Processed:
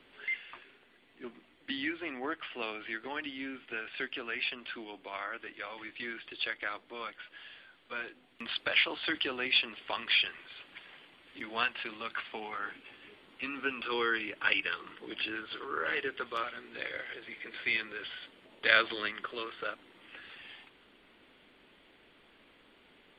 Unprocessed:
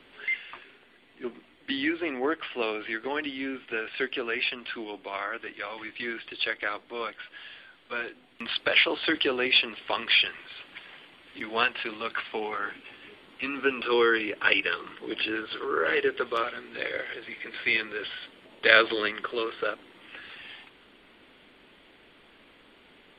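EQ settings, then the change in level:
dynamic equaliser 430 Hz, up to −7 dB, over −41 dBFS, Q 1.5
−5.5 dB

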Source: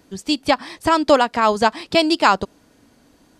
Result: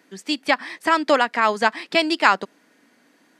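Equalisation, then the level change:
high-pass filter 190 Hz 24 dB per octave
parametric band 1,900 Hz +10.5 dB 0.93 octaves
−5.0 dB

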